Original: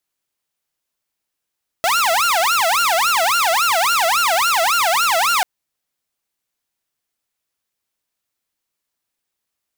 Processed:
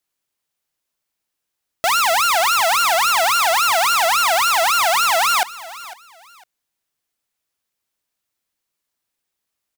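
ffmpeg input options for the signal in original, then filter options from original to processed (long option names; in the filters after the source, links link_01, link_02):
-f lavfi -i "aevalsrc='0.266*(2*mod((1030.5*t-379.5/(2*PI*3.6)*sin(2*PI*3.6*t)),1)-1)':duration=3.59:sample_rate=44100"
-af "aecho=1:1:503|1006:0.126|0.0315"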